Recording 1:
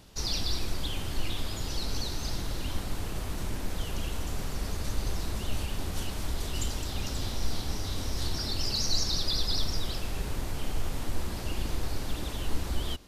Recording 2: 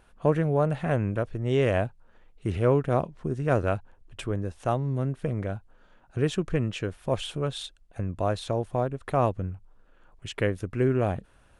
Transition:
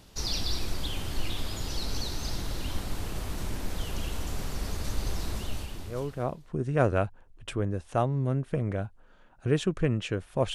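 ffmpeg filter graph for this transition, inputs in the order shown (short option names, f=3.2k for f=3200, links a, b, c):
-filter_complex "[0:a]apad=whole_dur=10.54,atrim=end=10.54,atrim=end=6.66,asetpts=PTS-STARTPTS[a];[1:a]atrim=start=2.05:end=7.25,asetpts=PTS-STARTPTS[b];[a][b]acrossfade=d=1.32:c1=qua:c2=qua"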